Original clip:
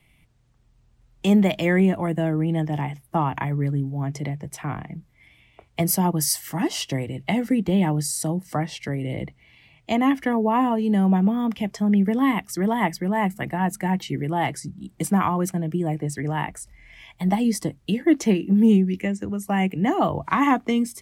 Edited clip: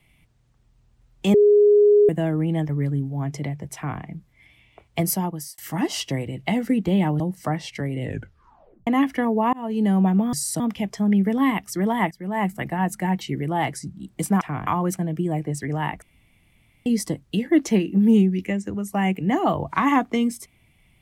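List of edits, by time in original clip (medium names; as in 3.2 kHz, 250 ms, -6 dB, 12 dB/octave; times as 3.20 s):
1.34–2.09 s: bleep 414 Hz -11 dBFS
2.69–3.50 s: delete
4.56–4.82 s: copy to 15.22 s
5.81–6.39 s: fade out
8.01–8.28 s: move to 11.41 s
9.08 s: tape stop 0.87 s
10.61–10.87 s: fade in
12.92–13.26 s: fade in, from -21 dB
16.57–17.41 s: room tone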